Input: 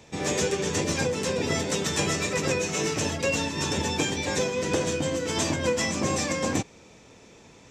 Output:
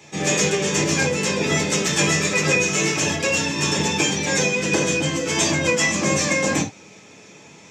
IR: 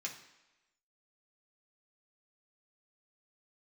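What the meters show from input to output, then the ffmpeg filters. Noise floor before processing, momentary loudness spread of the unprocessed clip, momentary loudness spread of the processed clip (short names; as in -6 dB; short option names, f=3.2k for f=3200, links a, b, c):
-52 dBFS, 2 LU, 3 LU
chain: -filter_complex "[1:a]atrim=start_sample=2205,atrim=end_sample=3969[a];[0:a][a]afir=irnorm=-1:irlink=0,volume=8dB"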